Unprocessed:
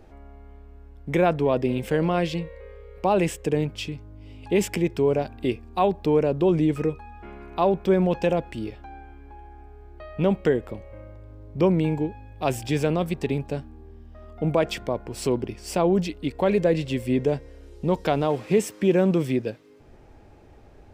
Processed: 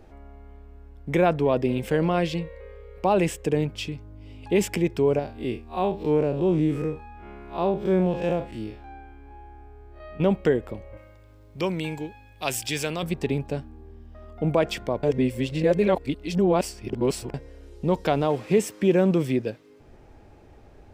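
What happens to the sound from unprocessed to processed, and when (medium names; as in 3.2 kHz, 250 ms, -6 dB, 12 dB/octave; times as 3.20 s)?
5.19–10.20 s: spectral blur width 96 ms
10.97–13.03 s: tilt shelf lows -8.5 dB, about 1.4 kHz
15.03–17.34 s: reverse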